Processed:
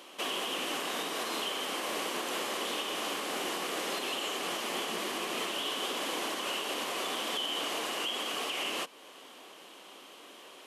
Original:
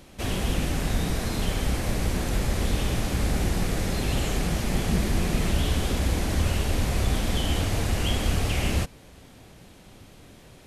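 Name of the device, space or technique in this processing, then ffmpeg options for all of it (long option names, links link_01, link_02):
laptop speaker: -af "highpass=frequency=320:width=0.5412,highpass=frequency=320:width=1.3066,equalizer=frequency=1100:width_type=o:width=0.4:gain=9,equalizer=frequency=3000:width_type=o:width=0.33:gain=10,alimiter=level_in=0.5dB:limit=-24dB:level=0:latency=1:release=262,volume=-0.5dB"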